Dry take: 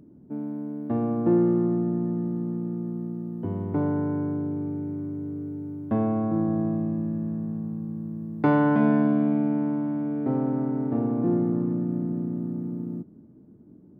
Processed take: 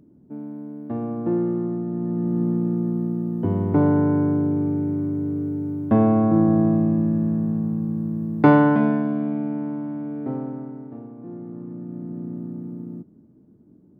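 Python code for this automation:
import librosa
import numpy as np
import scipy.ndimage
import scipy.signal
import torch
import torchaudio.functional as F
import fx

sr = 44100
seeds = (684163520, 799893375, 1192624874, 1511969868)

y = fx.gain(x, sr, db=fx.line((1.87, -2.0), (2.42, 7.5), (8.47, 7.5), (9.03, -2.0), (10.29, -2.0), (11.16, -15.0), (12.3, -2.0)))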